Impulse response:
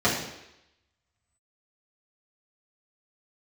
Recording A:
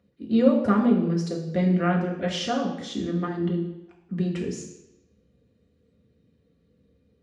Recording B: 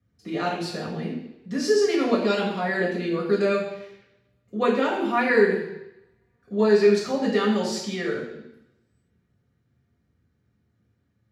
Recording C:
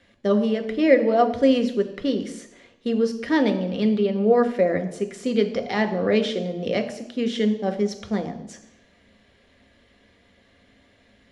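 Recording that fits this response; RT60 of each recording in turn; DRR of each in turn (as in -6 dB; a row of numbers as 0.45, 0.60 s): B; 0.85, 0.85, 0.85 s; -1.5, -8.5, 6.0 dB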